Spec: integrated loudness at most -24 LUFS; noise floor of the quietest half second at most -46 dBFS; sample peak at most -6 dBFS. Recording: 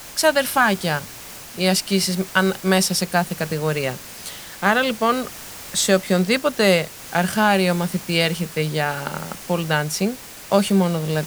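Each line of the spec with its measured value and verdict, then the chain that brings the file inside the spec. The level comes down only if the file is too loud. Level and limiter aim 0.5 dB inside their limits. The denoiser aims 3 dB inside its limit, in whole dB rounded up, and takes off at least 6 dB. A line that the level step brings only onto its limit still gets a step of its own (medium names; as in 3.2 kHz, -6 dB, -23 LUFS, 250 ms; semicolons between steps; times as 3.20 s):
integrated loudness -20.5 LUFS: fail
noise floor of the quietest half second -38 dBFS: fail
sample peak -2.5 dBFS: fail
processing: noise reduction 7 dB, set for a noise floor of -38 dBFS; trim -4 dB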